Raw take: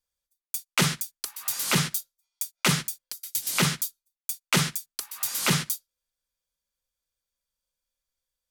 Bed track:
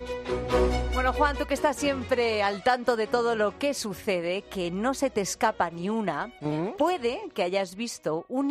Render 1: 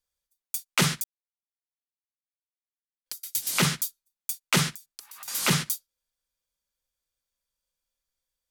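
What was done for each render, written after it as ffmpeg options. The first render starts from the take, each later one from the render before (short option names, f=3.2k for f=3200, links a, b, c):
-filter_complex "[0:a]asettb=1/sr,asplit=3[a][b][c];[a]atrim=end=4.734[d];[b]atrim=start=4.73:end=5.28,asetpts=PTS-STARTPTS,afade=t=in:d=0.004:c=qsin,afade=t=out:st=0.546:d=0.004:c=qsin,acompressor=threshold=-42dB:ratio=4:attack=3.2:release=140:knee=1:detection=peak[e];[c]atrim=start=5.276[f];[d][e]acrossfade=d=0.004:c1=hsin:c2=qsin[g];[g][f]acrossfade=d=0.004:c1=qsin:c2=hsin,asplit=3[h][i][j];[h]atrim=end=1.04,asetpts=PTS-STARTPTS,afade=t=out:st=1.036:d=0.004:c=hsin[k];[i]atrim=start=1.04:end=3.06,asetpts=PTS-STARTPTS,volume=0[l];[j]atrim=start=3.06,asetpts=PTS-STARTPTS,afade=t=in:d=0.004:c=hsin[m];[k][l][m]concat=n=3:v=0:a=1"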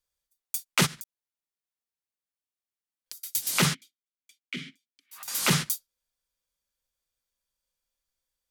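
-filter_complex "[0:a]asplit=3[a][b][c];[a]afade=t=out:st=0.85:d=0.02[d];[b]acompressor=threshold=-37dB:ratio=8:attack=3.2:release=140:knee=1:detection=peak,afade=t=in:st=0.85:d=0.02,afade=t=out:st=3.18:d=0.02[e];[c]afade=t=in:st=3.18:d=0.02[f];[d][e][f]amix=inputs=3:normalize=0,asplit=3[g][h][i];[g]afade=t=out:st=3.73:d=0.02[j];[h]asplit=3[k][l][m];[k]bandpass=f=270:t=q:w=8,volume=0dB[n];[l]bandpass=f=2.29k:t=q:w=8,volume=-6dB[o];[m]bandpass=f=3.01k:t=q:w=8,volume=-9dB[p];[n][o][p]amix=inputs=3:normalize=0,afade=t=in:st=3.73:d=0.02,afade=t=out:st=5.11:d=0.02[q];[i]afade=t=in:st=5.11:d=0.02[r];[j][q][r]amix=inputs=3:normalize=0"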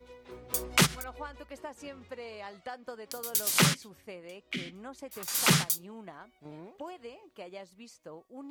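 -filter_complex "[1:a]volume=-18dB[a];[0:a][a]amix=inputs=2:normalize=0"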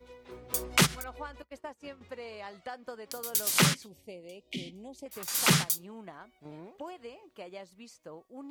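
-filter_complex "[0:a]asettb=1/sr,asplit=3[a][b][c];[a]atrim=end=1.424[d];[b]atrim=start=1.42:end=2.01,asetpts=PTS-STARTPTS,afade=t=in:d=0.004:c=qsin,afade=t=out:st=0.586:d=0.004:c=qsin,agate=range=-33dB:threshold=-43dB:ratio=3:release=100:detection=peak[e];[c]atrim=start=2.006[f];[d][e]acrossfade=d=0.004:c1=hsin:c2=qsin[g];[g][f]acrossfade=d=0.004:c1=qsin:c2=hsin,asettb=1/sr,asplit=3[h][i][j];[h]atrim=end=3.864[k];[i]atrim=start=3.86:end=5.06,asetpts=PTS-STARTPTS,afade=t=in:d=0.004:c=qsin,afade=t=out:st=1.196:d=0.004:c=qsin,asuperstop=centerf=1400:order=4:qfactor=0.72[l];[j]atrim=start=5.056[m];[k][l]acrossfade=d=0.004:c1=hsin:c2=qsin[n];[n][m]acrossfade=d=0.004:c1=qsin:c2=hsin"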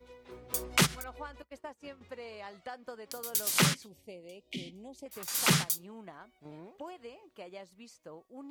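-af "volume=-2dB"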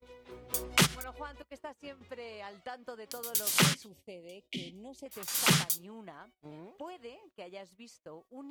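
-af "agate=range=-22dB:threshold=-58dB:ratio=16:detection=peak,equalizer=f=3.1k:t=o:w=0.4:g=2.5"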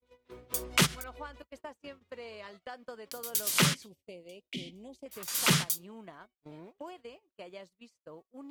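-af "agate=range=-17dB:threshold=-50dB:ratio=16:detection=peak,bandreject=f=800:w=12"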